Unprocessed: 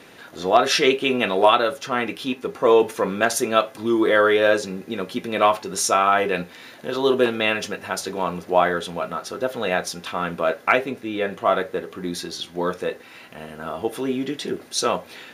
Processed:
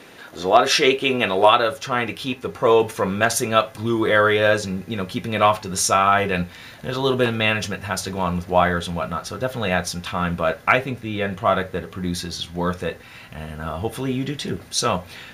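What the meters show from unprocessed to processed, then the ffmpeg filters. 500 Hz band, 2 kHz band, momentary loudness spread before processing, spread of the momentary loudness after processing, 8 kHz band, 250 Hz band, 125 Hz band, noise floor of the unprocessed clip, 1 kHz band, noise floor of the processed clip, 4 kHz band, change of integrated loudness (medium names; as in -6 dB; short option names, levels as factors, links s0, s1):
-0.5 dB, +2.0 dB, 13 LU, 12 LU, +2.0 dB, +0.5 dB, +10.0 dB, -45 dBFS, +1.5 dB, -43 dBFS, +2.0 dB, +1.0 dB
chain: -af "asubboost=boost=10.5:cutoff=100,volume=1.26"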